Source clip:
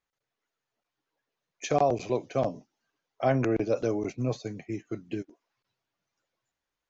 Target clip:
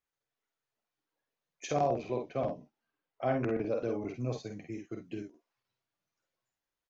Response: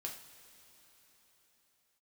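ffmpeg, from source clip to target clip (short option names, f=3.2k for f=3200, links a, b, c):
-filter_complex "[0:a]asettb=1/sr,asplit=3[a][b][c];[a]atrim=end=1.854[d];[b]atrim=start=1.85:end=4.16,asetpts=PTS-STARTPTS,afade=t=in:d=0.004:c=qsin,afade=t=out:st=2.306:d=0.004:c=qsin,lowpass=3.5k[e];[c]atrim=start=4.156[f];[d][e]acrossfade=d=0.004:c1=hsin:c2=qsin[g];[g][f]acrossfade=d=0.004:c1=qsin:c2=hsin,aecho=1:1:49|62:0.562|0.266,volume=-6.5dB"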